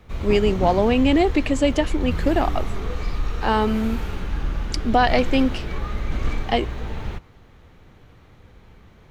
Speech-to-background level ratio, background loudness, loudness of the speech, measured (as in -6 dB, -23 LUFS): 8.0 dB, -29.5 LUFS, -21.5 LUFS